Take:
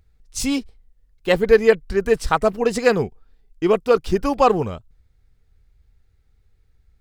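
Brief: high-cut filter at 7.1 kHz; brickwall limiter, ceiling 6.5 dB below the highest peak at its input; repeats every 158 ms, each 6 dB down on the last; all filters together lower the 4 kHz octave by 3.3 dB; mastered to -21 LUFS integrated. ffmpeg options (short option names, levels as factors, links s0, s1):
-af "lowpass=7100,equalizer=f=4000:t=o:g=-4,alimiter=limit=0.376:level=0:latency=1,aecho=1:1:158|316|474|632|790|948:0.501|0.251|0.125|0.0626|0.0313|0.0157"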